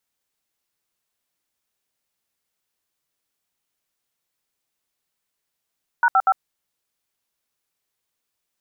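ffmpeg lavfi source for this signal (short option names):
-f lavfi -i "aevalsrc='0.168*clip(min(mod(t,0.12),0.052-mod(t,0.12))/0.002,0,1)*(eq(floor(t/0.12),0)*(sin(2*PI*941*mod(t,0.12))+sin(2*PI*1477*mod(t,0.12)))+eq(floor(t/0.12),1)*(sin(2*PI*770*mod(t,0.12))+sin(2*PI*1336*mod(t,0.12)))+eq(floor(t/0.12),2)*(sin(2*PI*770*mod(t,0.12))+sin(2*PI*1336*mod(t,0.12))))':d=0.36:s=44100"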